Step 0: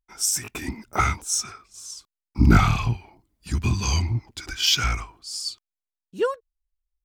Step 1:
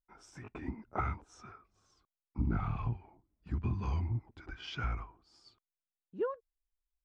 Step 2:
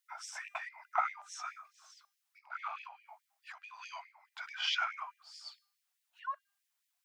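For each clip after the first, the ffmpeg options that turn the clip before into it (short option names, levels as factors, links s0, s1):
-af "lowpass=1300,acompressor=threshold=0.0891:ratio=6,volume=0.398"
-af "bandreject=f=400.6:t=h:w=4,bandreject=f=801.2:t=h:w=4,bandreject=f=1201.8:t=h:w=4,bandreject=f=1602.4:t=h:w=4,bandreject=f=2003:t=h:w=4,bandreject=f=2403.6:t=h:w=4,bandreject=f=2804.2:t=h:w=4,bandreject=f=3204.8:t=h:w=4,bandreject=f=3605.4:t=h:w=4,bandreject=f=4006:t=h:w=4,bandreject=f=4406.6:t=h:w=4,bandreject=f=4807.2:t=h:w=4,bandreject=f=5207.8:t=h:w=4,bandreject=f=5608.4:t=h:w=4,bandreject=f=6009:t=h:w=4,bandreject=f=6409.6:t=h:w=4,bandreject=f=6810.2:t=h:w=4,bandreject=f=7210.8:t=h:w=4,bandreject=f=7611.4:t=h:w=4,bandreject=f=8012:t=h:w=4,bandreject=f=8412.6:t=h:w=4,bandreject=f=8813.2:t=h:w=4,bandreject=f=9213.8:t=h:w=4,bandreject=f=9614.4:t=h:w=4,bandreject=f=10015:t=h:w=4,bandreject=f=10415.6:t=h:w=4,bandreject=f=10816.2:t=h:w=4,bandreject=f=11216.8:t=h:w=4,acompressor=threshold=0.00794:ratio=2.5,afftfilt=real='re*gte(b*sr/1024,570*pow(1800/570,0.5+0.5*sin(2*PI*4.7*pts/sr)))':imag='im*gte(b*sr/1024,570*pow(1800/570,0.5+0.5*sin(2*PI*4.7*pts/sr)))':win_size=1024:overlap=0.75,volume=4.47"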